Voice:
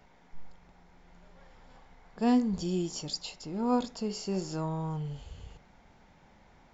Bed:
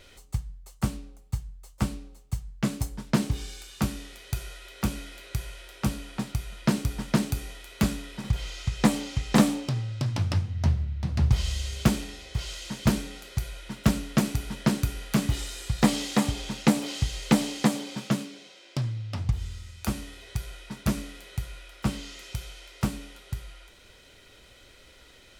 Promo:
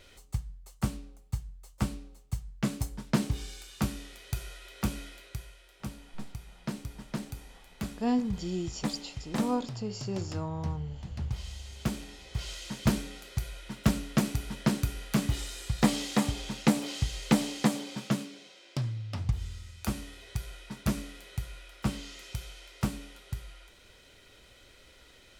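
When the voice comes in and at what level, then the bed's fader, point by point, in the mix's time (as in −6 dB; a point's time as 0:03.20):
5.80 s, −2.5 dB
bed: 0:05.06 −3 dB
0:05.59 −12 dB
0:11.63 −12 dB
0:12.46 −3 dB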